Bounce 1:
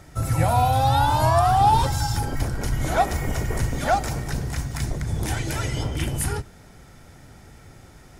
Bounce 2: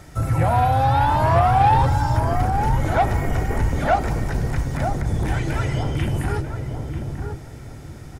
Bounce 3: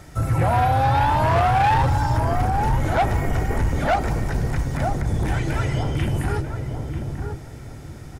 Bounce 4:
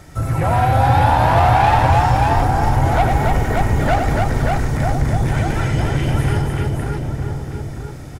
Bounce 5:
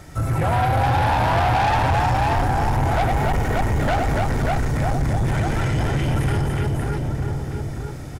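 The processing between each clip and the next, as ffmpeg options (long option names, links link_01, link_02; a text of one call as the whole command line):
ffmpeg -i in.wav -filter_complex "[0:a]acrossover=split=2600[link_01][link_02];[link_02]acompressor=threshold=-46dB:ratio=4:attack=1:release=60[link_03];[link_01][link_03]amix=inputs=2:normalize=0,aeval=exprs='0.422*(cos(1*acos(clip(val(0)/0.422,-1,1)))-cos(1*PI/2))+0.0422*(cos(5*acos(clip(val(0)/0.422,-1,1)))-cos(5*PI/2))':channel_layout=same,asplit=2[link_04][link_05];[link_05]adelay=941,lowpass=frequency=840:poles=1,volume=-4.5dB,asplit=2[link_06][link_07];[link_07]adelay=941,lowpass=frequency=840:poles=1,volume=0.31,asplit=2[link_08][link_09];[link_09]adelay=941,lowpass=frequency=840:poles=1,volume=0.31,asplit=2[link_10][link_11];[link_11]adelay=941,lowpass=frequency=840:poles=1,volume=0.31[link_12];[link_04][link_06][link_08][link_10][link_12]amix=inputs=5:normalize=0" out.wav
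ffmpeg -i in.wav -af "asoftclip=type=hard:threshold=-14.5dB" out.wav
ffmpeg -i in.wav -af "aecho=1:1:93|287|583:0.501|0.668|0.668,volume=1.5dB" out.wav
ffmpeg -i in.wav -af "asoftclip=type=tanh:threshold=-15dB" out.wav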